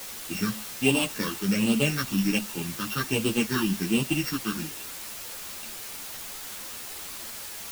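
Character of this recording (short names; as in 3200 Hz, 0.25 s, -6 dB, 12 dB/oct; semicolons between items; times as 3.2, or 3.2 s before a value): a buzz of ramps at a fixed pitch in blocks of 16 samples; phasing stages 6, 1.3 Hz, lowest notch 560–1700 Hz; a quantiser's noise floor 6-bit, dither triangular; a shimmering, thickened sound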